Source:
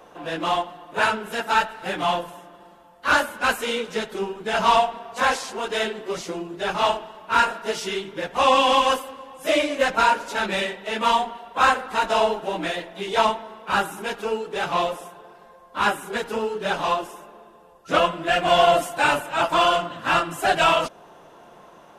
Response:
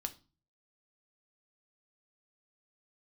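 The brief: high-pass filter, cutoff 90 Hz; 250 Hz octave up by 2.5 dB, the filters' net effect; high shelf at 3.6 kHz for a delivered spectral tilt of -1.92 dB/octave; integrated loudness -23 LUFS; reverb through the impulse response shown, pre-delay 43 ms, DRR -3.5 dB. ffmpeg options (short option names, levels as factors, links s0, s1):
-filter_complex "[0:a]highpass=90,equalizer=f=250:t=o:g=3.5,highshelf=f=3600:g=-8,asplit=2[s0][s1];[1:a]atrim=start_sample=2205,adelay=43[s2];[s1][s2]afir=irnorm=-1:irlink=0,volume=1.68[s3];[s0][s3]amix=inputs=2:normalize=0,volume=0.562"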